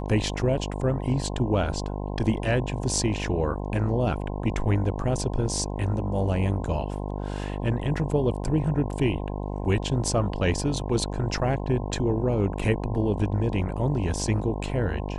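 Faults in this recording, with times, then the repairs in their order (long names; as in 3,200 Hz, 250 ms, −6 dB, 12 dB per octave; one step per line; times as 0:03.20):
mains buzz 50 Hz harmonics 21 −31 dBFS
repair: hum removal 50 Hz, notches 21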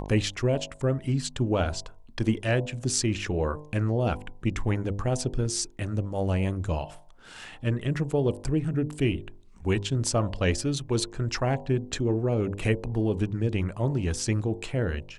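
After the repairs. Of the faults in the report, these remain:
none of them is left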